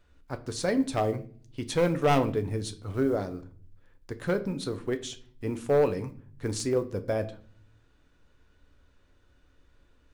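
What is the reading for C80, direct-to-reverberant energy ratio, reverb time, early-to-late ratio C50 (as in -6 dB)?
20.0 dB, 8.5 dB, 0.45 s, 16.0 dB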